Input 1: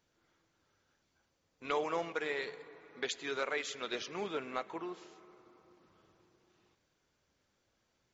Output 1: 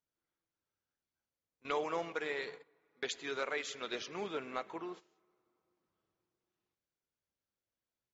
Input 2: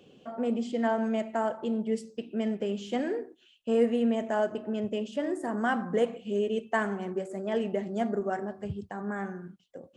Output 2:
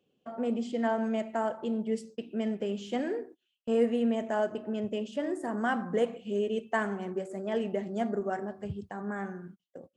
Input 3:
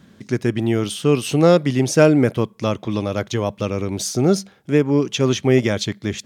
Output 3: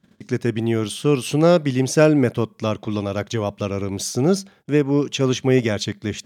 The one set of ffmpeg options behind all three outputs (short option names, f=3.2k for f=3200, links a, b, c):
-af "agate=range=-17dB:threshold=-47dB:ratio=16:detection=peak,volume=-1.5dB"